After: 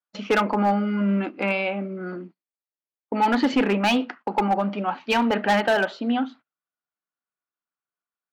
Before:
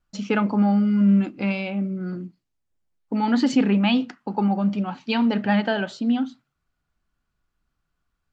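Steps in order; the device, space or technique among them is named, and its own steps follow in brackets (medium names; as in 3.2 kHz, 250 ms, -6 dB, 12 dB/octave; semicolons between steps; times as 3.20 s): walkie-talkie (band-pass 420–2600 Hz; hard clipper -22 dBFS, distortion -13 dB; gate -51 dBFS, range -20 dB); trim +7.5 dB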